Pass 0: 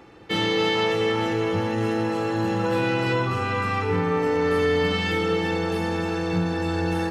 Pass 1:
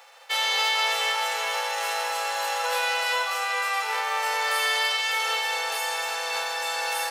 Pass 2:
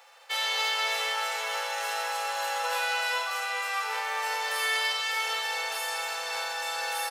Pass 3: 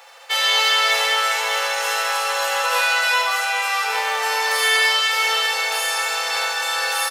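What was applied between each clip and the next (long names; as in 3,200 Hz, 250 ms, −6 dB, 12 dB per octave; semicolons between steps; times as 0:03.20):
spectral envelope flattened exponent 0.6; Chebyshev high-pass filter 530 Hz, order 5
double-tracking delay 47 ms −13.5 dB; convolution reverb, pre-delay 39 ms, DRR 8.5 dB; level −4.5 dB
ambience of single reflections 13 ms −9 dB, 72 ms −6 dB; level +9 dB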